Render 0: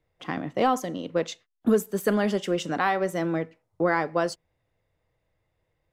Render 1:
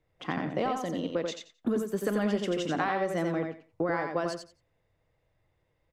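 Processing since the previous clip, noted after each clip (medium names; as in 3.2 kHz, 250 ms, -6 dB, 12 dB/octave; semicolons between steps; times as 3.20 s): treble shelf 9.9 kHz -11.5 dB; compression, threshold -26 dBFS, peak gain reduction 10 dB; on a send: feedback delay 88 ms, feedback 19%, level -4.5 dB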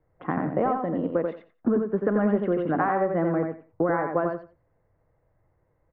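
low-pass 1.6 kHz 24 dB/octave; trim +5.5 dB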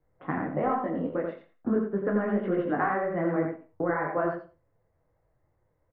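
dynamic bell 2 kHz, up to +5 dB, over -42 dBFS, Q 1.5; doubling 46 ms -12.5 dB; detune thickener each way 40 cents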